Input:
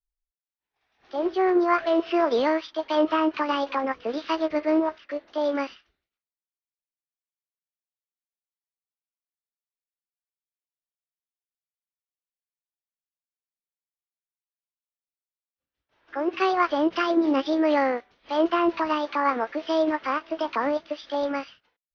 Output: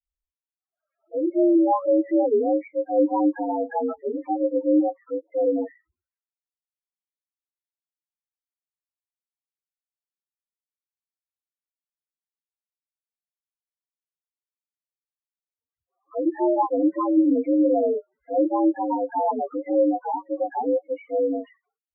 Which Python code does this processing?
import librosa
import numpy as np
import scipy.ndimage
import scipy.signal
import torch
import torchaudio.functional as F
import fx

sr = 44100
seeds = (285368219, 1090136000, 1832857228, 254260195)

y = fx.partial_stretch(x, sr, pct=83)
y = fx.leveller(y, sr, passes=1)
y = fx.spec_topn(y, sr, count=4)
y = y * 10.0 ** (1.5 / 20.0)